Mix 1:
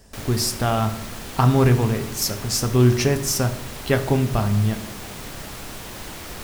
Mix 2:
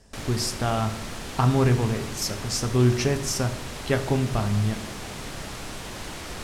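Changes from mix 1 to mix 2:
speech -4.0 dB; master: add LPF 9500 Hz 12 dB/oct

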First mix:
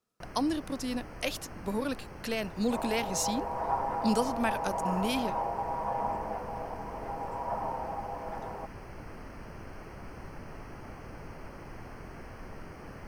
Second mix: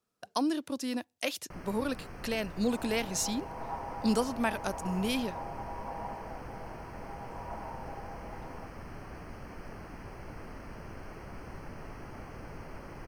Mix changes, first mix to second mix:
first sound: entry +1.30 s; second sound -8.5 dB

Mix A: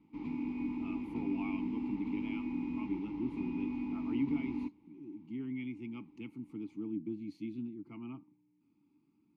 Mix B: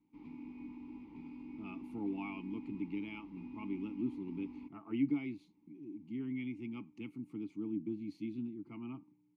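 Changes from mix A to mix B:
speech: entry +0.80 s; background -11.0 dB

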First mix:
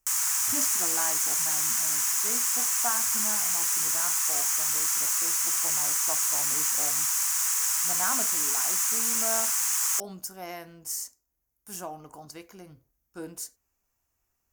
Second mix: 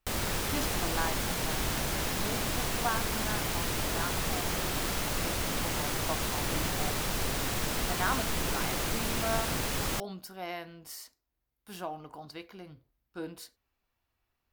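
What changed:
background: remove steep high-pass 940 Hz 48 dB/oct; master: add resonant high shelf 5100 Hz -9.5 dB, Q 3

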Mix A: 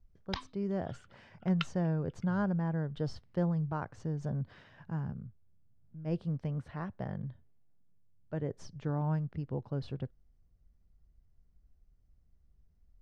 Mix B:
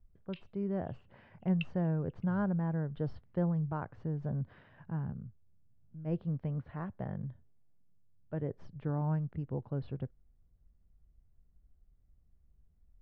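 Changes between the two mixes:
background: add ladder high-pass 2600 Hz, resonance 85%; master: add air absorption 390 m

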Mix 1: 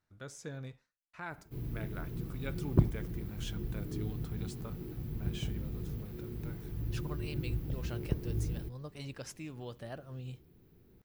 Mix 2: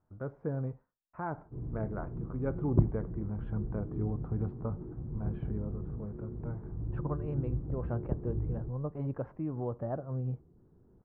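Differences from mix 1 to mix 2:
speech +9.0 dB; master: add LPF 1100 Hz 24 dB/oct

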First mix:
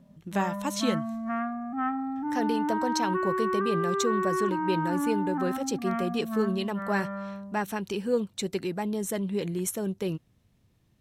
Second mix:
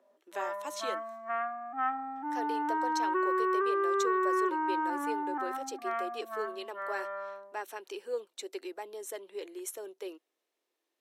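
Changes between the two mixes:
speech -8.0 dB; master: add steep high-pass 330 Hz 48 dB/oct

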